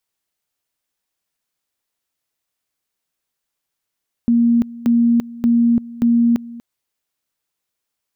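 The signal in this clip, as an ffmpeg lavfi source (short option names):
-f lavfi -i "aevalsrc='pow(10,(-10.5-19.5*gte(mod(t,0.58),0.34))/20)*sin(2*PI*235*t)':d=2.32:s=44100"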